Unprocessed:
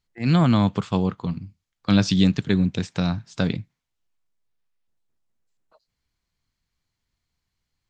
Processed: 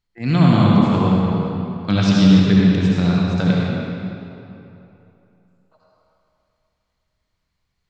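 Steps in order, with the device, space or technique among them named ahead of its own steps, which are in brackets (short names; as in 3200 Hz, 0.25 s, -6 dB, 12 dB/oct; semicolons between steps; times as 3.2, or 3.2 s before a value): swimming-pool hall (reverb RT60 3.0 s, pre-delay 61 ms, DRR -5 dB; high shelf 5800 Hz -7 dB)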